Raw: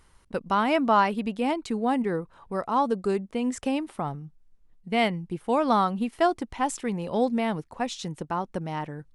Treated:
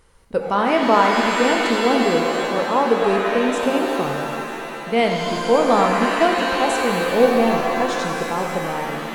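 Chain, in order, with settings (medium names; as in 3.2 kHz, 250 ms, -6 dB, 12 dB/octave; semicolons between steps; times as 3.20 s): peaking EQ 490 Hz +9 dB 0.44 oct; pitch-shifted reverb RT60 2.7 s, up +7 st, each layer -2 dB, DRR 2.5 dB; trim +2.5 dB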